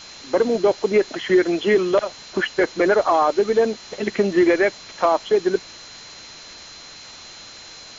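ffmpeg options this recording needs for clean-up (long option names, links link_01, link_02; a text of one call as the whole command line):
ffmpeg -i in.wav -af "bandreject=frequency=4100:width=30,afwtdn=0.013" out.wav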